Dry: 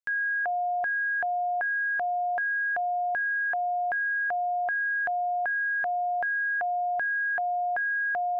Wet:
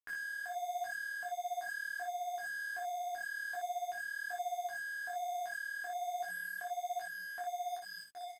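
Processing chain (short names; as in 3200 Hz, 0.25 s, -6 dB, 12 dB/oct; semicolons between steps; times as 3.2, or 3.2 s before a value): ending faded out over 2.47 s; 3.61–4.3 notches 50/100/150/200/250/300 Hz; 6.56–7.19 HPF 170 Hz 12 dB/oct; comb 2.8 ms, depth 85%; limiter -29.5 dBFS, peak gain reduction 10 dB; compressor 5:1, threshold -40 dBFS, peak gain reduction 8 dB; bit-crush 8-bit; early reflections 11 ms -5.5 dB, 59 ms -4 dB; downsampling 32000 Hz; detuned doubles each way 39 cents; gain -1 dB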